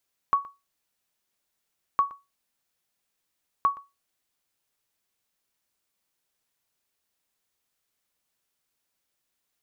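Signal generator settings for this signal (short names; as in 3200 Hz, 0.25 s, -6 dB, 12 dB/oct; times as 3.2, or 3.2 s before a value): sonar ping 1120 Hz, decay 0.23 s, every 1.66 s, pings 3, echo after 0.12 s, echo -20 dB -13.5 dBFS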